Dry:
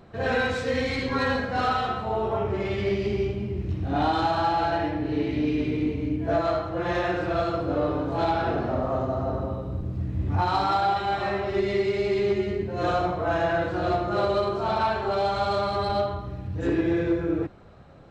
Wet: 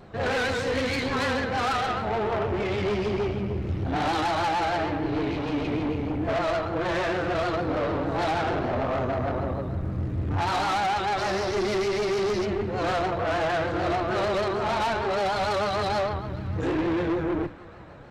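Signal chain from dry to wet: 11.17–12.44 band noise 3700–5900 Hz -43 dBFS; tube stage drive 28 dB, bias 0.5; notches 60/120/180/240/300 Hz; narrowing echo 0.506 s, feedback 62%, band-pass 1500 Hz, level -16.5 dB; vibrato 6.6 Hz 90 cents; gain +5.5 dB

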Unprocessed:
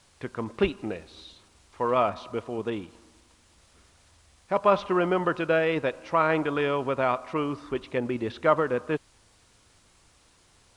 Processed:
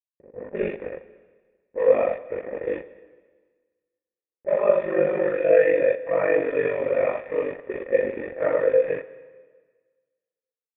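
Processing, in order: phase scrambler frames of 0.2 s; sample gate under -31.5 dBFS; AGC gain up to 8.5 dB; low-pass opened by the level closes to 370 Hz, open at -15.5 dBFS; ring modulator 24 Hz; vocal tract filter e; on a send: reverb RT60 1.5 s, pre-delay 3 ms, DRR 13 dB; on the sum: gain +8 dB

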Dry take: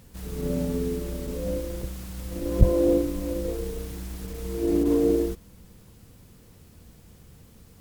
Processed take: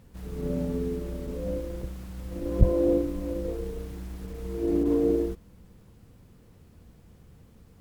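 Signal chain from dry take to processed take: high shelf 3100 Hz -10 dB; gain -2 dB

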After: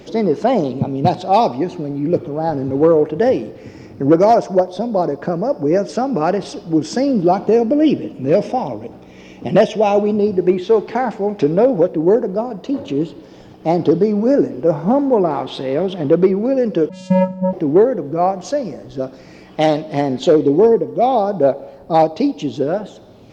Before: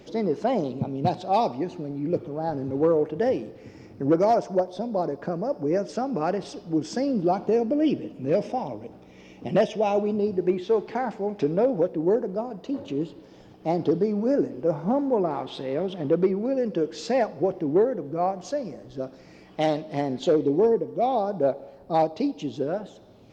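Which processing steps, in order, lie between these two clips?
16.89–17.53 vocoder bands 8, square 186 Hz; gain +9 dB

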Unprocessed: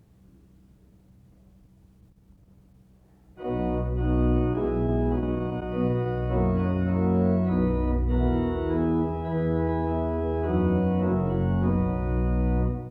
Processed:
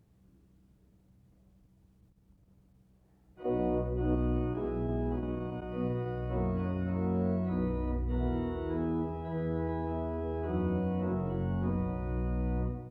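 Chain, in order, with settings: 3.45–4.15 bell 440 Hz +8 dB 1.5 oct; gain -8 dB

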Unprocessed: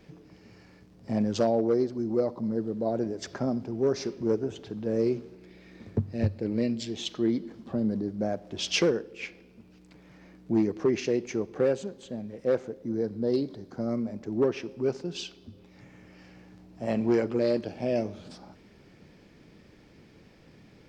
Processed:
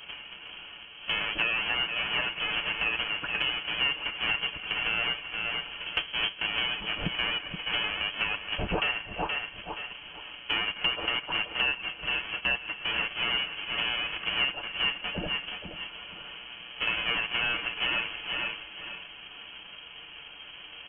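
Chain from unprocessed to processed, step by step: half-waves squared off; bell 140 Hz -13.5 dB 1.6 oct; notch 1200 Hz, Q 6.6; comb 7.3 ms, depth 50%; inverted band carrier 3200 Hz; feedback echo 0.474 s, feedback 25%, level -12 dB; compressor 4:1, threshold -36 dBFS, peak gain reduction 16.5 dB; gain +8 dB

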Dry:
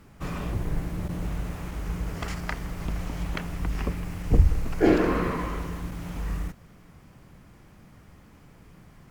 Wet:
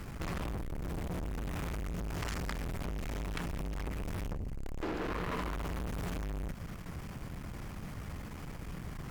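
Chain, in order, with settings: compressor 20:1, threshold -33 dBFS, peak gain reduction 24 dB; low shelf 150 Hz +10.5 dB; tube stage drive 41 dB, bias 0.5; low shelf 400 Hz -6.5 dB; gain +11.5 dB

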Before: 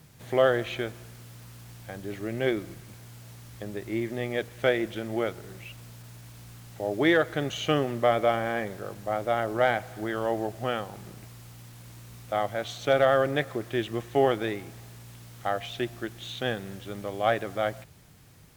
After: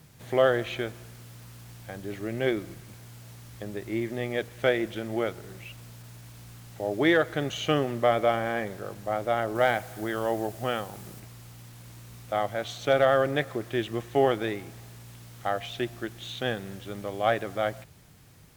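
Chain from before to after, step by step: 9.55–11.2 high shelf 6900 Hz +7.5 dB

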